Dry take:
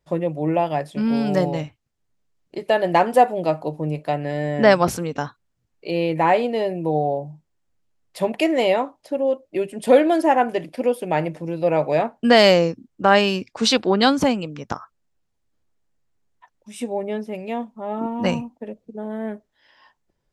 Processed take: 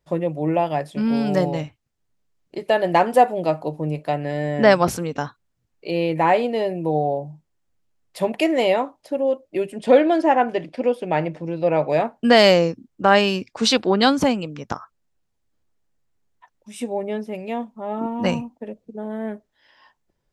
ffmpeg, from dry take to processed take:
-filter_complex "[0:a]asettb=1/sr,asplit=3[a][b][c];[a]atrim=end=9.784[d];[b]atrim=start=9.78:end=11.89,asetpts=PTS-STARTPTS,afade=t=in:d=0.004:c=qsin,afade=t=out:st=2.106:d=0.004:c=qsin,lowpass=5.5k[e];[c]atrim=start=11.886[f];[d][e]acrossfade=d=0.004:c1=hsin:c2=qsin[g];[g][f]acrossfade=d=0.004:c1=qsin:c2=hsin"

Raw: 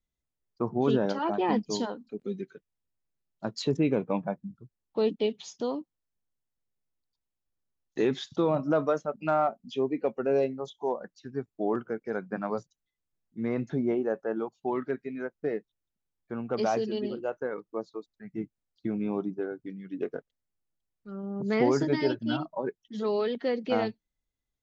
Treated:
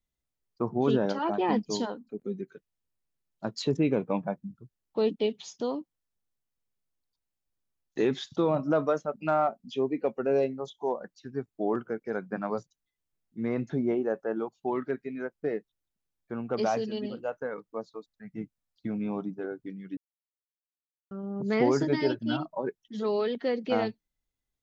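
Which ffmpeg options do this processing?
-filter_complex "[0:a]asettb=1/sr,asplit=3[a][b][c];[a]atrim=end=1.994[d];[b]atrim=start=1.99:end=2.52,asetpts=PTS-STARTPTS,afade=t=in:d=0.004:c=qsin,afade=t=out:st=0.526:d=0.004:c=qsin,equalizer=f=3.8k:w=0.81:g=-10.5[e];[c]atrim=start=2.516[f];[d][e]acrossfade=d=0.004:c1=hsin:c2=qsin[g];[g][f]acrossfade=d=0.004:c1=qsin:c2=hsin,asettb=1/sr,asplit=3[h][i][j];[h]atrim=end=16.684[k];[i]atrim=start=16.68:end=19.44,asetpts=PTS-STARTPTS,afade=t=in:d=0.004:c=qsin,afade=t=out:st=2.756:d=0.004:c=qsin,equalizer=f=360:t=o:w=0.21:g=-15[l];[j]atrim=start=19.436[m];[k][l]acrossfade=d=0.004:c1=hsin:c2=qsin[n];[n][m]acrossfade=d=0.004:c1=qsin:c2=hsin,asplit=3[o][p][q];[o]atrim=end=19.97,asetpts=PTS-STARTPTS,afade=t=out:st=19.966:d=0.004:c=hsin[r];[p]atrim=start=19.97:end=21.11,asetpts=PTS-STARTPTS,volume=0[s];[q]atrim=start=21.11,asetpts=PTS-STARTPTS,afade=t=in:d=0.004:c=hsin[t];[r][s][t]concat=n=3:v=0:a=1"

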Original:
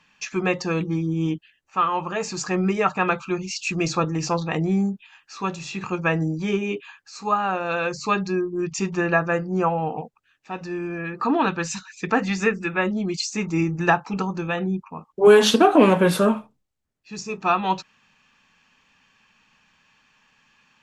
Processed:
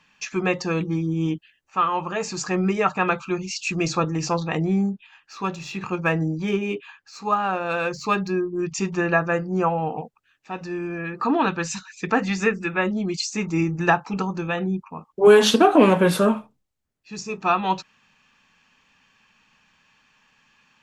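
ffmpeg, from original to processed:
-filter_complex "[0:a]asettb=1/sr,asplit=3[a][b][c];[a]atrim=end=4.634[d];[b]atrim=start=4.63:end=8.54,asetpts=PTS-STARTPTS,afade=t=in:d=0.004:c=qsin,afade=t=out:st=3.906:d=0.004:c=qsin,adynamicsmooth=sensitivity=5:basefreq=6.9k[e];[c]atrim=start=8.536[f];[d][e]acrossfade=d=0.004:c1=hsin:c2=qsin[g];[g][f]acrossfade=d=0.004:c1=qsin:c2=hsin"

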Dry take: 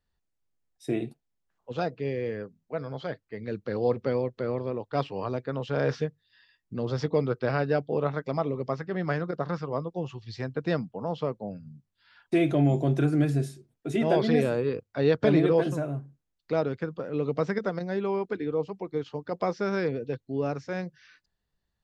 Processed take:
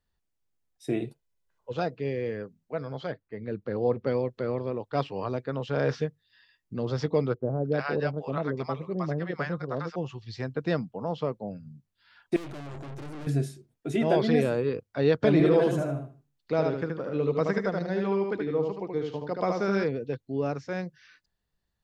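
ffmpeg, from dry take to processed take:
-filter_complex "[0:a]asettb=1/sr,asplit=3[a][b][c];[a]atrim=end=1.044[d];[b]atrim=start=1.04:end=1.74,asetpts=PTS-STARTPTS,afade=t=in:d=0.004:c=qsin,afade=t=out:st=0.696:d=0.004:c=qsin,aecho=1:1:2:0.5,atrim=end_sample=30870[e];[c]atrim=start=1.736[f];[d][e]acrossfade=d=0.004:c1=hsin:c2=qsin[g];[g][f]acrossfade=d=0.004:c1=qsin:c2=hsin,asettb=1/sr,asplit=3[h][i][j];[h]atrim=end=3.124[k];[i]atrim=start=3.12:end=4.07,asetpts=PTS-STARTPTS,afade=t=in:d=0.004:c=qsin,afade=t=out:st=0.946:d=0.004:c=qsin,lowpass=f=1.7k:p=1[l];[j]atrim=start=4.066[m];[k][l]acrossfade=d=0.004:c1=hsin:c2=qsin[n];[n][m]acrossfade=d=0.004:c1=qsin:c2=hsin,asettb=1/sr,asplit=3[o][p][q];[o]atrim=end=7.344[r];[p]atrim=start=7.34:end=9.96,asetpts=PTS-STARTPTS,afade=t=in:d=0.004:c=qsin,afade=t=out:st=2.616:d=0.004:c=qsin,acrossover=split=710[s][t];[t]adelay=310[u];[s][u]amix=inputs=2:normalize=0,atrim=end_sample=115542[v];[q]atrim=start=9.956[w];[r][v]acrossfade=d=0.004:c1=hsin:c2=qsin[x];[x][w]acrossfade=d=0.004:c1=qsin:c2=hsin,asettb=1/sr,asplit=3[y][z][aa];[y]atrim=end=12.364[ab];[z]atrim=start=12.36:end=13.27,asetpts=PTS-STARTPTS,afade=t=in:d=0.004:c=qsin,afade=t=out:st=0.906:d=0.004:c=qsin,aeval=exprs='(tanh(89.1*val(0)+0.65)-tanh(0.65))/89.1':c=same[ac];[aa]atrim=start=13.266[ad];[ab][ac]acrossfade=d=0.004:c1=hsin:c2=qsin[ae];[ae][ad]acrossfade=d=0.004:c1=qsin:c2=hsin,asettb=1/sr,asplit=3[af][ag][ah];[af]atrim=end=15.324[ai];[ag]atrim=start=15.32:end=19.84,asetpts=PTS-STARTPTS,afade=t=in:d=0.004:c=qsin,afade=t=out:st=4.516:d=0.004:c=qsin,aecho=1:1:76|152|228:0.631|0.151|0.0363,atrim=end_sample=199332[aj];[ah]atrim=start=19.836[ak];[ai][aj]acrossfade=d=0.004:c1=hsin:c2=qsin[al];[al][ak]acrossfade=d=0.004:c1=qsin:c2=hsin"

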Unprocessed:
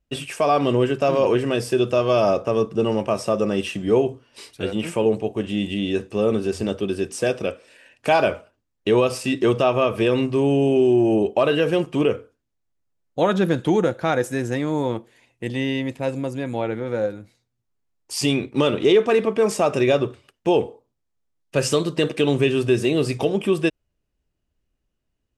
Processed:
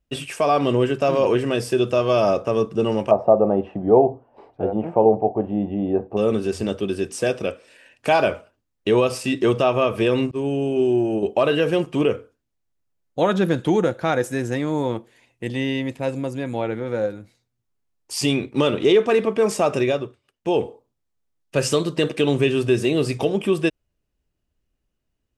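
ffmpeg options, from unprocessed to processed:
-filter_complex "[0:a]asettb=1/sr,asplit=3[a][b][c];[a]atrim=end=3.114[d];[b]atrim=start=3.11:end=6.17,asetpts=PTS-STARTPTS,afade=t=in:d=0.004:c=qsin,afade=t=out:st=3.056:d=0.004:c=qsin,lowpass=f=770:t=q:w=5.3[e];[c]atrim=start=6.166[f];[d][e]acrossfade=d=0.004:c1=hsin:c2=qsin[g];[g][f]acrossfade=d=0.004:c1=qsin:c2=hsin,asettb=1/sr,asplit=3[h][i][j];[h]atrim=end=10.314[k];[i]atrim=start=10.31:end=11.23,asetpts=PTS-STARTPTS,afade=t=in:d=0.004:c=qsin,afade=t=out:st=0.916:d=0.004:c=qsin,agate=range=-33dB:threshold=-14dB:ratio=3:release=100:detection=peak[l];[j]atrim=start=11.226[m];[k][l]acrossfade=d=0.004:c1=hsin:c2=qsin[n];[n][m]acrossfade=d=0.004:c1=qsin:c2=hsin,asplit=3[o][p][q];[o]atrim=end=20.19,asetpts=PTS-STARTPTS,afade=t=out:st=19.75:d=0.44:silence=0.141254[r];[p]atrim=start=20.19:end=20.21,asetpts=PTS-STARTPTS,volume=-17dB[s];[q]atrim=start=20.21,asetpts=PTS-STARTPTS,afade=t=in:d=0.44:silence=0.141254[t];[r][s][t]concat=n=3:v=0:a=1"

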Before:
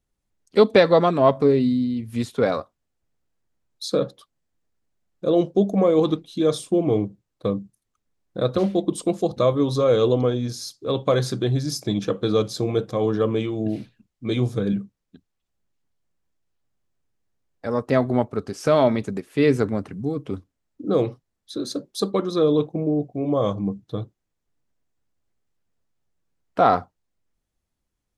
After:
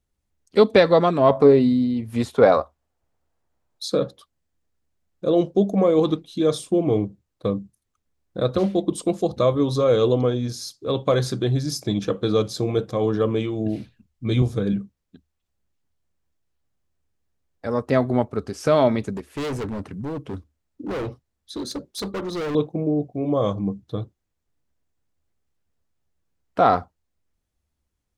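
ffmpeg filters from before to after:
-filter_complex "[0:a]asettb=1/sr,asplit=3[a][b][c];[a]atrim=end=1.304[d];[b]atrim=start=1.3:end=3.88,asetpts=PTS-STARTPTS,afade=t=in:d=0.004:c=qsin,afade=t=out:st=2.576:d=0.004:c=qsin,equalizer=f=780:w=0.76:g=9.5[e];[c]atrim=start=3.876[f];[d][e]acrossfade=d=0.004:c1=hsin:c2=qsin[g];[g][f]acrossfade=d=0.004:c1=qsin:c2=hsin,asettb=1/sr,asplit=3[h][i][j];[h]atrim=end=13.774[k];[i]atrim=start=13.77:end=14.42,asetpts=PTS-STARTPTS,afade=t=in:d=0.004:c=qsin,afade=t=out:st=0.646:d=0.004:c=qsin,asubboost=boost=9:cutoff=210[l];[j]atrim=start=14.416[m];[k][l]acrossfade=d=0.004:c1=hsin:c2=qsin[n];[n][m]acrossfade=d=0.004:c1=qsin:c2=hsin,asettb=1/sr,asplit=3[o][p][q];[o]atrim=end=19.164[r];[p]atrim=start=19.16:end=22.55,asetpts=PTS-STARTPTS,afade=t=in:d=0.004:c=qsin,afade=t=out:st=3.386:d=0.004:c=qsin,volume=25.5dB,asoftclip=hard,volume=-25.5dB[s];[q]atrim=start=22.546[t];[r][s]acrossfade=d=0.004:c1=hsin:c2=qsin[u];[u][t]acrossfade=d=0.004:c1=qsin:c2=hsin,equalizer=f=74:w=4.9:g=12"

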